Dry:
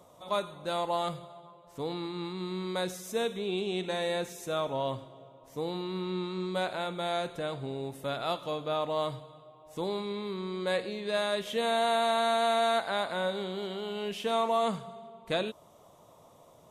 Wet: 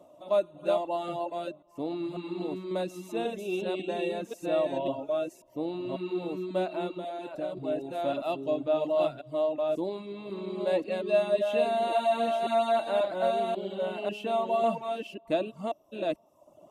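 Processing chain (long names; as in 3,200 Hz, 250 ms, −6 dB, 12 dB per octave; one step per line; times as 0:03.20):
delay that plays each chunk backwards 542 ms, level −2 dB
reverb reduction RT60 0.82 s
0:06.94–0:07.57: downward compressor 6 to 1, threshold −35 dBFS, peak gain reduction 8 dB
hollow resonant body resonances 310/600/2,700 Hz, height 17 dB, ringing for 30 ms
level −8.5 dB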